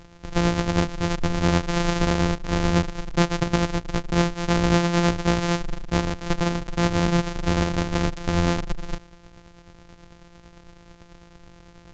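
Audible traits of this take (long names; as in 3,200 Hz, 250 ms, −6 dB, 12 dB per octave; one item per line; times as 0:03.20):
a buzz of ramps at a fixed pitch in blocks of 256 samples
tremolo triangle 9.1 Hz, depth 45%
A-law companding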